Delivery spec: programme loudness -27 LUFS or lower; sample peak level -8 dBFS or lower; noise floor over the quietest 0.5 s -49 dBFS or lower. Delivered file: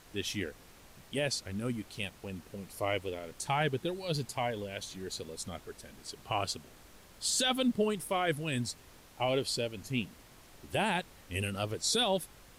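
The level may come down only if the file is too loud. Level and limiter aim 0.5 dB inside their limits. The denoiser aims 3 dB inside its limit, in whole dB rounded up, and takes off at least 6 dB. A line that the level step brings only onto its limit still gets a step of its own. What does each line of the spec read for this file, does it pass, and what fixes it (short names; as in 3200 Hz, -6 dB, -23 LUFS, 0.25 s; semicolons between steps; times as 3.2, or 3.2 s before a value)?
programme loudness -34.0 LUFS: OK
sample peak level -18.5 dBFS: OK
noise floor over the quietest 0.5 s -56 dBFS: OK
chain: none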